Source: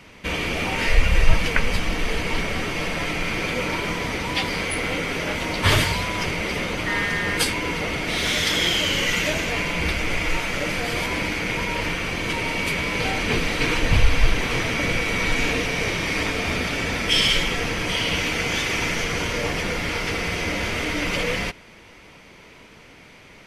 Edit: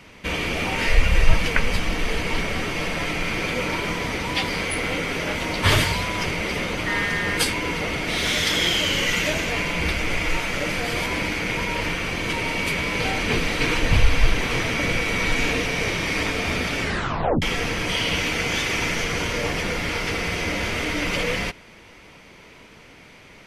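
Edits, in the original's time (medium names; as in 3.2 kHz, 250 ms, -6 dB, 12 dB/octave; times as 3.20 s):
16.82 s: tape stop 0.60 s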